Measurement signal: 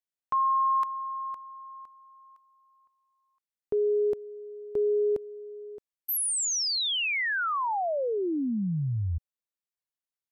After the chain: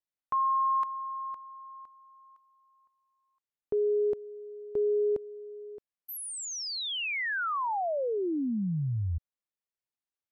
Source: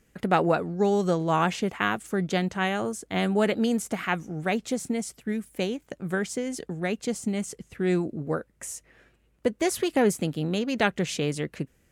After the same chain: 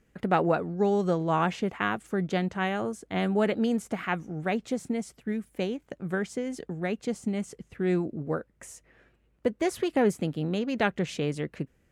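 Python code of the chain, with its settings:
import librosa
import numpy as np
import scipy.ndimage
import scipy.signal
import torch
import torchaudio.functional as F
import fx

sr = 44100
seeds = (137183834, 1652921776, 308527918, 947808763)

y = fx.high_shelf(x, sr, hz=4100.0, db=-10.0)
y = F.gain(torch.from_numpy(y), -1.5).numpy()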